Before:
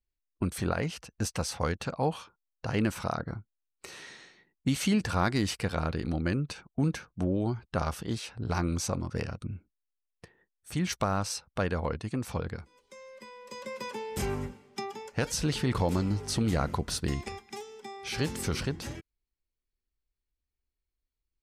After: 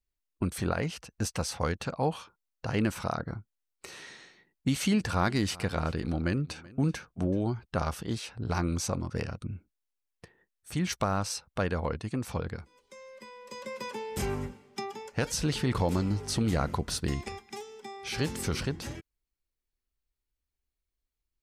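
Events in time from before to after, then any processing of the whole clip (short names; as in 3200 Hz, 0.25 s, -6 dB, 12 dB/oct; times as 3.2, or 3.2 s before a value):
4.88–7.45 echo 0.381 s -21.5 dB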